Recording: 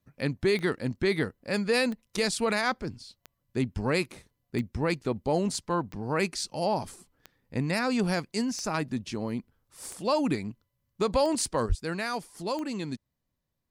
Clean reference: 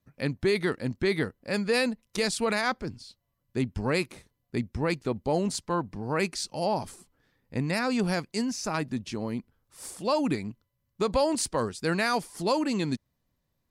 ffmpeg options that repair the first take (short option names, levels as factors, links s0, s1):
-filter_complex "[0:a]adeclick=t=4,asplit=3[s0][s1][s2];[s0]afade=t=out:st=11.68:d=0.02[s3];[s1]highpass=f=140:w=0.5412,highpass=f=140:w=1.3066,afade=t=in:st=11.68:d=0.02,afade=t=out:st=11.8:d=0.02[s4];[s2]afade=t=in:st=11.8:d=0.02[s5];[s3][s4][s5]amix=inputs=3:normalize=0,asetnsamples=n=441:p=0,asendcmd='11.66 volume volume 5.5dB',volume=1"